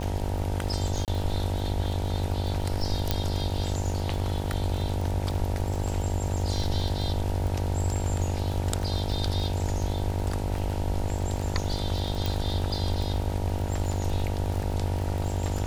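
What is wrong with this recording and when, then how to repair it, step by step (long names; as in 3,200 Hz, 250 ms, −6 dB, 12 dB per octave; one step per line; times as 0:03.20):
mains buzz 50 Hz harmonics 19 −32 dBFS
surface crackle 33 per second −30 dBFS
0:01.05–0:01.08: drop-out 28 ms
0:03.11: click −9 dBFS
0:12.26: click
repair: click removal
hum removal 50 Hz, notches 19
repair the gap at 0:01.05, 28 ms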